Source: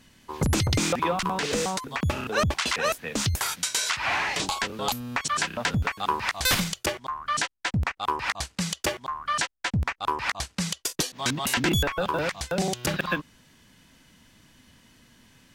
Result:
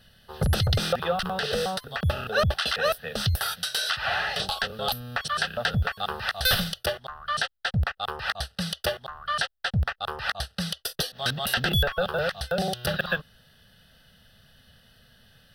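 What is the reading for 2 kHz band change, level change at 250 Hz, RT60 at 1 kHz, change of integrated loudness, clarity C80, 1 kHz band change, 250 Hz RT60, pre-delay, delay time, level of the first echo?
+0.5 dB, -4.5 dB, none, -0.5 dB, none, -2.5 dB, none, none, none, none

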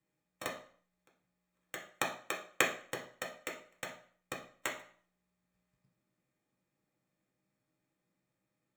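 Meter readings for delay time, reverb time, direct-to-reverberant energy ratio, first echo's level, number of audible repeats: none, 0.50 s, -2.0 dB, none, none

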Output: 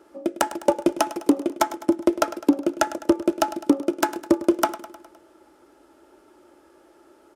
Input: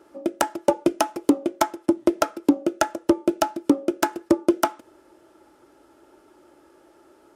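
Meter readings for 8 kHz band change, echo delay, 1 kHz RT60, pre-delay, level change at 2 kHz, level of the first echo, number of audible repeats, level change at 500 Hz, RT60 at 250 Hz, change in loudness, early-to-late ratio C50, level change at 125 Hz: 0.0 dB, 0.103 s, none, none, 0.0 dB, -15.0 dB, 4, 0.0 dB, none, 0.0 dB, none, -2.0 dB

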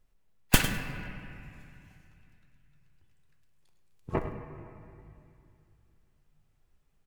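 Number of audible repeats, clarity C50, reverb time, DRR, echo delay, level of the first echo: 1, 6.0 dB, 2.5 s, 5.0 dB, 0.102 s, -12.0 dB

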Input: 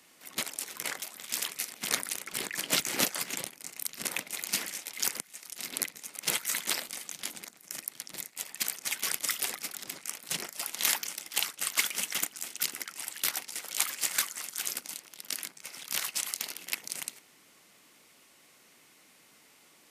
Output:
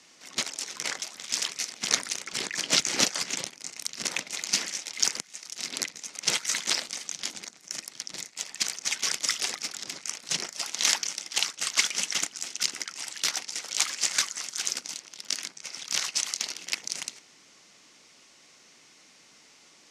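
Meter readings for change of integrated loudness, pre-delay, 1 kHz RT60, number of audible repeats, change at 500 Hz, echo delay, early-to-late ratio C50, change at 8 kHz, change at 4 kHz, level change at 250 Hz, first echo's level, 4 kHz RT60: +3.5 dB, none, none, none, +2.0 dB, none, none, +4.5 dB, +6.5 dB, +2.0 dB, none, none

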